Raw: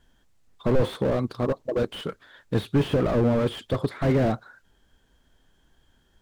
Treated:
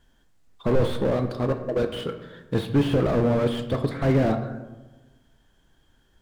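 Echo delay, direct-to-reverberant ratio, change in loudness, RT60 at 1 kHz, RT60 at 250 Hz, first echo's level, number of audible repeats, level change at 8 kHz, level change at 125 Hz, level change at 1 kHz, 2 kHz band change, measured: no echo audible, 7.0 dB, +1.0 dB, 1.1 s, 1.4 s, no echo audible, no echo audible, can't be measured, +1.0 dB, +1.0 dB, +1.0 dB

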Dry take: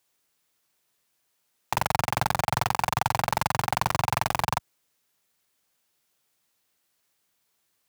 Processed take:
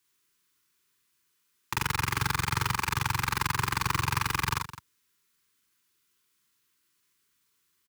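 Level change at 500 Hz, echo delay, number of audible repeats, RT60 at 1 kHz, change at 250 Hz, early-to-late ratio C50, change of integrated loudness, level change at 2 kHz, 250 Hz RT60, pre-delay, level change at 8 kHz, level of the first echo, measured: −11.5 dB, 42 ms, 3, no reverb audible, −1.0 dB, no reverb audible, −2.0 dB, +1.0 dB, no reverb audible, no reverb audible, 0.0 dB, −2.5 dB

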